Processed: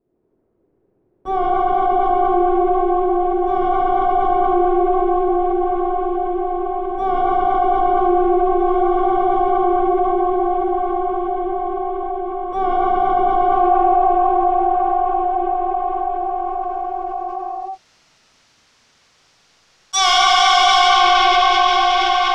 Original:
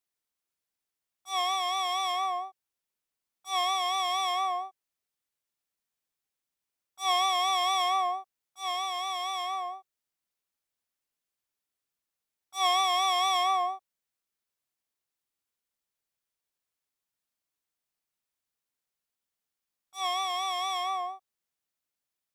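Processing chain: waveshaping leveller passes 5; low-pass sweep 380 Hz -> 5.7 kHz, 13.27–15.90 s; reverberation RT60 5.4 s, pre-delay 48 ms, DRR -9 dB; level flattener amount 70%; trim -4 dB

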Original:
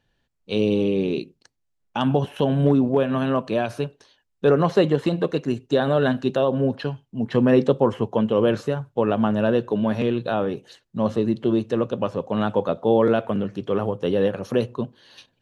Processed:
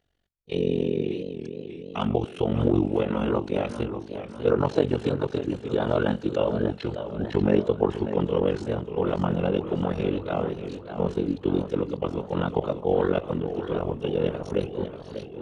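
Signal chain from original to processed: formant-preserving pitch shift -3.5 st; AM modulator 46 Hz, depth 95%; modulated delay 593 ms, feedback 55%, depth 140 cents, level -10 dB

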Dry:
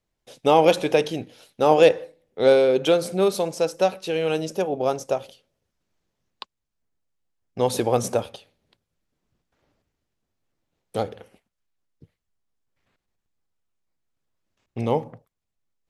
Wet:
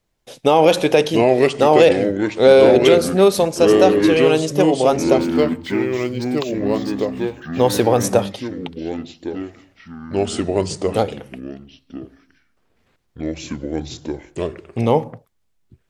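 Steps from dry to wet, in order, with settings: ever faster or slower copies 572 ms, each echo -4 st, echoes 3, each echo -6 dB; loudness maximiser +8.5 dB; 5.20–8.04 s: decimation joined by straight lines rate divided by 2×; trim -1 dB

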